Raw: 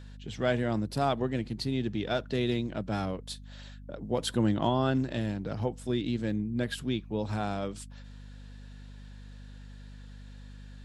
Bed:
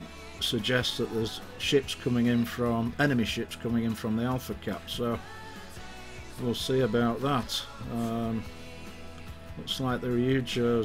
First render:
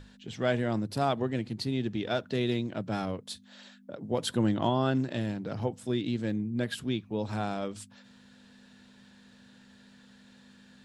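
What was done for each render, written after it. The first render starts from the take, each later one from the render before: hum notches 50/100/150 Hz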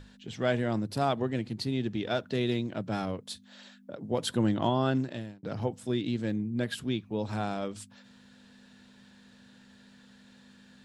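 4.96–5.43 s: fade out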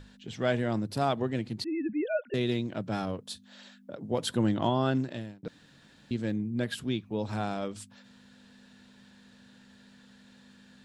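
1.64–2.34 s: formants replaced by sine waves; 2.99–3.46 s: band-stop 2.1 kHz, Q 7.4; 5.48–6.11 s: room tone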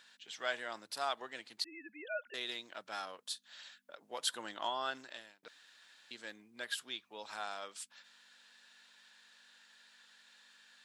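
high-pass 1.2 kHz 12 dB/octave; dynamic bell 2.4 kHz, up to -4 dB, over -54 dBFS, Q 2.2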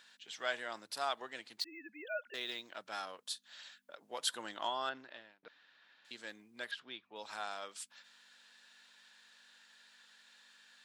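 1.60–2.74 s: decimation joined by straight lines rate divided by 2×; 4.89–6.05 s: distance through air 250 m; 6.71–7.16 s: distance through air 240 m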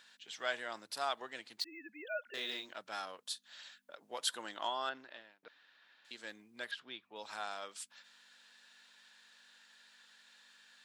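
2.25–2.73 s: doubling 37 ms -5 dB; 4.17–6.23 s: bass shelf 120 Hz -10 dB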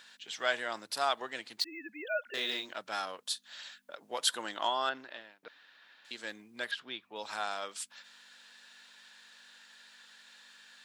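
trim +6 dB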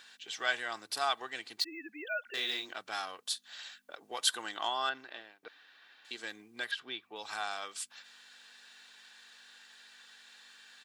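dynamic bell 410 Hz, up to -6 dB, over -47 dBFS, Q 0.74; comb 2.6 ms, depth 38%

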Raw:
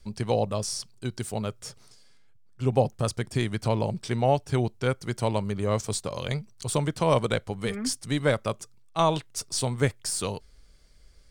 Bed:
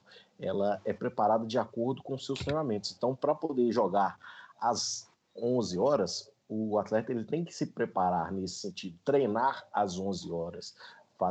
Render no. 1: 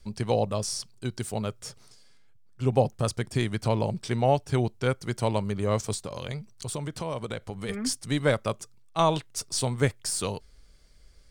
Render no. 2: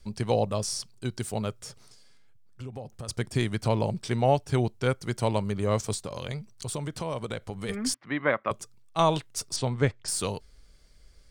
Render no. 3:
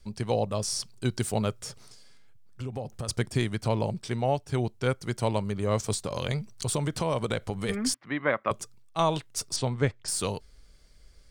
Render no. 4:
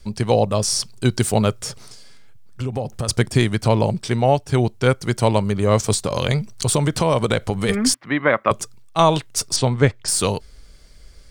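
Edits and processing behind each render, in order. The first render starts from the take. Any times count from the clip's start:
5.94–7.69 s: compression 3:1, threshold -31 dBFS
1.62–3.09 s: compression, threshold -36 dBFS; 7.94–8.51 s: cabinet simulation 260–2600 Hz, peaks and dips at 450 Hz -6 dB, 1.1 kHz +6 dB, 1.9 kHz +6 dB; 9.56–10.08 s: distance through air 120 m
gain riding within 5 dB 0.5 s
trim +10 dB; peak limiter -2 dBFS, peak gain reduction 2.5 dB

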